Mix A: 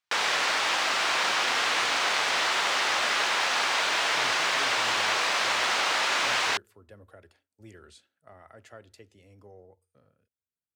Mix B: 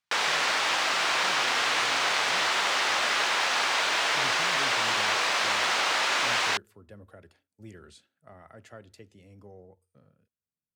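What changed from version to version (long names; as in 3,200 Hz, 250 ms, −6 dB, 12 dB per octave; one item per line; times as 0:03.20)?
speech: add parametric band 170 Hz +8.5 dB 1.1 octaves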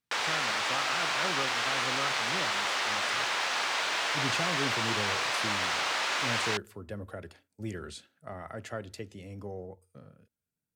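speech +9.0 dB
background −4.5 dB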